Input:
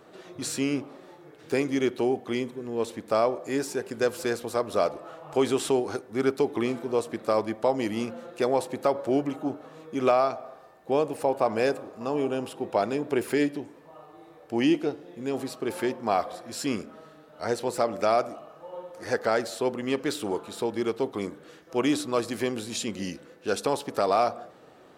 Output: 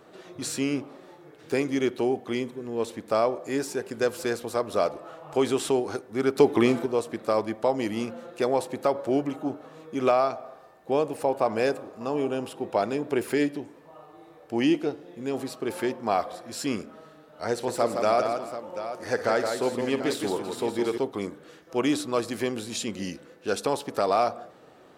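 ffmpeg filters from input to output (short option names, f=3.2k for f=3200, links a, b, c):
-filter_complex "[0:a]asettb=1/sr,asplit=3[a][b][c];[a]atrim=end=17.514[d];[b]atrim=start=17.51:end=20.98,asetpts=PTS-STARTPTS,afade=t=in:d=0.004:c=qsin,afade=t=out:st=3.466:d=0.004:c=qsin,aecho=1:1:59|165|333|738:0.188|0.501|0.141|0.251,atrim=end_sample=153027[e];[c]atrim=start=20.976[f];[d][e]acrossfade=d=0.004:c1=hsin:c2=qsin[g];[g][f]acrossfade=d=0.004:c1=qsin:c2=hsin,asplit=3[h][i][j];[h]atrim=end=6.362[k];[i]atrim=start=6.358:end=6.862,asetpts=PTS-STARTPTS,volume=6.5dB[l];[j]atrim=start=6.858[m];[k][l]acrossfade=d=0.004:c1=hsin:c2=hsin[n];[n][m]acrossfade=d=0.004:c1=hsin:c2=hsin"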